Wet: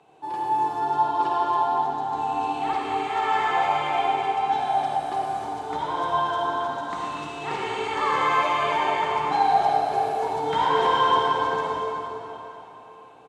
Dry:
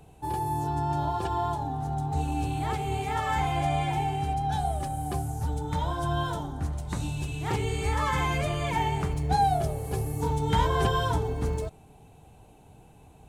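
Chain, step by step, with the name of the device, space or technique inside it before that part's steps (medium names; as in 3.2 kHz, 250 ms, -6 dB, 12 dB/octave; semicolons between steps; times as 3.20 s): station announcement (band-pass 380–4600 Hz; peaking EQ 1.1 kHz +5 dB 0.46 oct; loudspeakers at several distances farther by 37 m -11 dB, 83 m -10 dB; reverberation RT60 3.7 s, pre-delay 45 ms, DRR -3.5 dB)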